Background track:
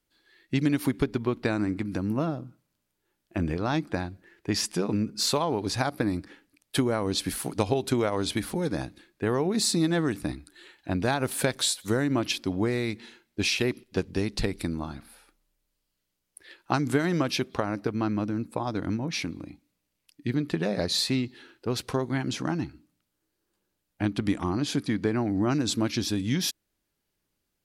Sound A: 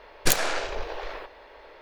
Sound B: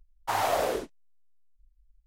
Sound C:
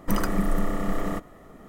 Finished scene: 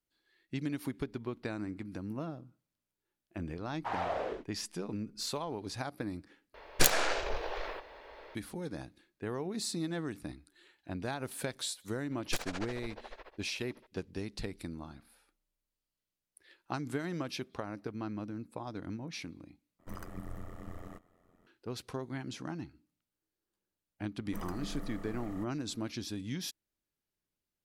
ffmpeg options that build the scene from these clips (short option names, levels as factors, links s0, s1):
-filter_complex "[1:a]asplit=2[s0][s1];[3:a]asplit=2[s2][s3];[0:a]volume=0.266[s4];[2:a]lowpass=2800[s5];[s1]tremolo=f=14:d=0.97[s6];[s2]tremolo=f=88:d=0.857[s7];[s4]asplit=3[s8][s9][s10];[s8]atrim=end=6.544[s11];[s0]atrim=end=1.81,asetpts=PTS-STARTPTS,volume=0.708[s12];[s9]atrim=start=8.346:end=19.794[s13];[s7]atrim=end=1.68,asetpts=PTS-STARTPTS,volume=0.15[s14];[s10]atrim=start=21.466[s15];[s5]atrim=end=2.06,asetpts=PTS-STARTPTS,volume=0.398,afade=t=in:d=0.004:c=hsin,afade=t=out:st=2.056:d=0.004:c=hsin,adelay=157437S[s16];[s6]atrim=end=1.81,asetpts=PTS-STARTPTS,volume=0.299,afade=t=in:d=0.004:c=hsin,afade=t=out:st=1.806:d=0.004:c=hsin,adelay=12060[s17];[s3]atrim=end=1.68,asetpts=PTS-STARTPTS,volume=0.126,afade=t=in:d=0.004:c=hsin,afade=t=out:st=1.676:d=0.004:c=hsin,adelay=24250[s18];[s11][s12]acrossfade=d=0.004:c1=hsin:c2=hsin[s19];[s19][s13]acrossfade=d=0.004:c1=hsin:c2=hsin[s20];[s20][s14]acrossfade=d=0.004:c1=hsin:c2=hsin[s21];[s21][s15]acrossfade=d=0.004:c1=hsin:c2=hsin[s22];[s22][s16][s17][s18]amix=inputs=4:normalize=0"